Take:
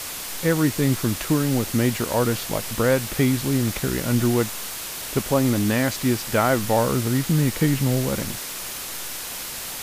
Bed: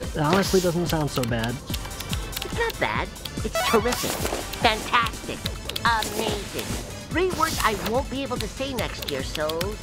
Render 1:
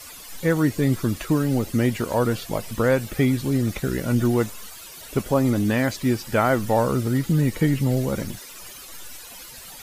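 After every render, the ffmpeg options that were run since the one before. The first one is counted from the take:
-af "afftdn=nr=14:nf=-33"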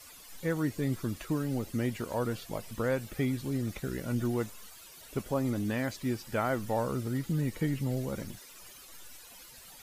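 -af "volume=-10.5dB"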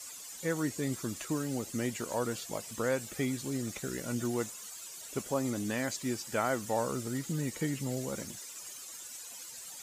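-af "highpass=f=210:p=1,equalizer=f=7.2k:w=1.5:g=12"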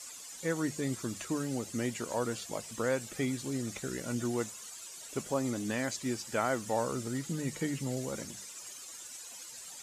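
-af "lowpass=11k,bandreject=f=50:t=h:w=6,bandreject=f=100:t=h:w=6,bandreject=f=150:t=h:w=6,bandreject=f=200:t=h:w=6"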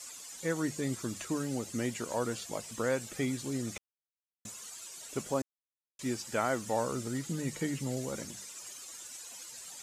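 -filter_complex "[0:a]asplit=5[a][b][c][d][e];[a]atrim=end=3.78,asetpts=PTS-STARTPTS,afade=t=out:st=3.776:d=0.004:c=hsin[f];[b]atrim=start=3.78:end=4.45,asetpts=PTS-STARTPTS,volume=0[g];[c]atrim=start=4.45:end=5.42,asetpts=PTS-STARTPTS,afade=t=in:d=0.004:c=hsin,afade=t=out:st=0.966:d=0.004:c=hsin[h];[d]atrim=start=5.42:end=5.99,asetpts=PTS-STARTPTS,volume=0[i];[e]atrim=start=5.99,asetpts=PTS-STARTPTS,afade=t=in:d=0.004:c=hsin[j];[f][g][h][i][j]concat=n=5:v=0:a=1"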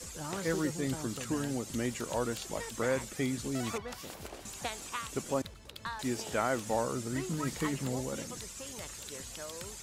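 -filter_complex "[1:a]volume=-18.5dB[a];[0:a][a]amix=inputs=2:normalize=0"

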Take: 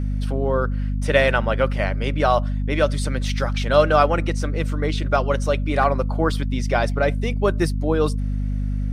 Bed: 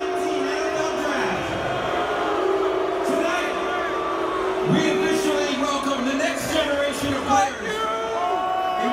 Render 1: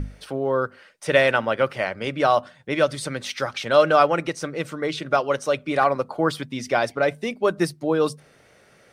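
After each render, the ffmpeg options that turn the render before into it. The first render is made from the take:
-af "bandreject=f=50:t=h:w=6,bandreject=f=100:t=h:w=6,bandreject=f=150:t=h:w=6,bandreject=f=200:t=h:w=6,bandreject=f=250:t=h:w=6"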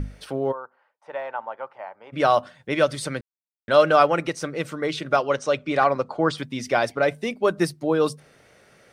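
-filter_complex "[0:a]asplit=3[a][b][c];[a]afade=t=out:st=0.51:d=0.02[d];[b]bandpass=f=880:t=q:w=5.1,afade=t=in:st=0.51:d=0.02,afade=t=out:st=2.12:d=0.02[e];[c]afade=t=in:st=2.12:d=0.02[f];[d][e][f]amix=inputs=3:normalize=0,asettb=1/sr,asplit=3[g][h][i];[g]atrim=end=5.244[j];[h]atrim=start=5.24:end=6.38,asetpts=PTS-STARTPTS,afade=t=in:d=0.004:c=qsin,afade=t=out:st=1.136:d=0.004:c=qsin,lowpass=f=7.9k:w=0.5412,lowpass=f=7.9k:w=1.3066[k];[i]atrim=start=6.376[l];[j][k]acrossfade=d=0.004:c1=hsin:c2=qsin[m];[m][l]acrossfade=d=0.004:c1=qsin:c2=hsin,asplit=3[n][o][p];[n]atrim=end=3.21,asetpts=PTS-STARTPTS,afade=t=out:st=3.206:d=0.004:c=hsin[q];[o]atrim=start=3.21:end=3.68,asetpts=PTS-STARTPTS,volume=0[r];[p]atrim=start=3.68,asetpts=PTS-STARTPTS,afade=t=in:d=0.004:c=hsin[s];[q][r][s]concat=n=3:v=0:a=1"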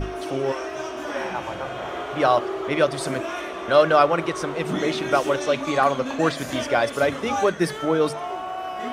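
-filter_complex "[1:a]volume=-7.5dB[a];[0:a][a]amix=inputs=2:normalize=0"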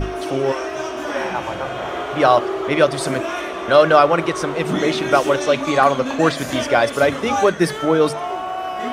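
-af "volume=5dB,alimiter=limit=-1dB:level=0:latency=1"

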